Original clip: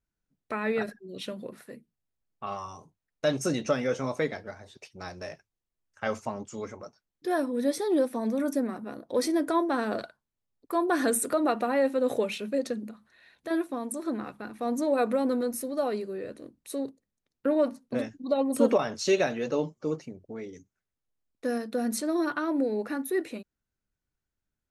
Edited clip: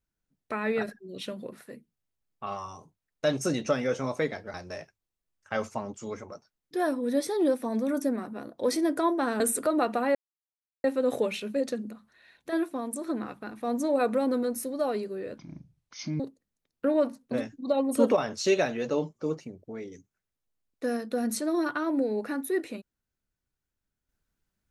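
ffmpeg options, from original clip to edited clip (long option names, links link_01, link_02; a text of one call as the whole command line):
ffmpeg -i in.wav -filter_complex "[0:a]asplit=6[link_01][link_02][link_03][link_04][link_05][link_06];[link_01]atrim=end=4.542[link_07];[link_02]atrim=start=5.048:end=9.912[link_08];[link_03]atrim=start=11.068:end=11.82,asetpts=PTS-STARTPTS,afade=type=out:start_time=0.748:duration=0.004:curve=hsin,apad=pad_dur=0.69[link_09];[link_04]atrim=start=11.82:end=16.364,asetpts=PTS-STARTPTS,afade=type=in:duration=0.004:curve=hsin[link_10];[link_05]atrim=start=16.36:end=16.81,asetpts=PTS-STARTPTS,asetrate=24255,aresample=44100[link_11];[link_06]atrim=start=16.806[link_12];[link_07][link_08]acrossfade=duration=0.004:curve1=hsin:curve2=hsin[link_13];[link_09][link_10]concat=n=2:v=0:a=1[link_14];[link_13][link_14]acrossfade=duration=0.004:curve1=hsin:curve2=hsin[link_15];[link_15][link_11]acrossfade=duration=0.004:curve1=hsin:curve2=hsin[link_16];[link_16][link_12]acrossfade=duration=0.004:curve1=hsin:curve2=hsin" out.wav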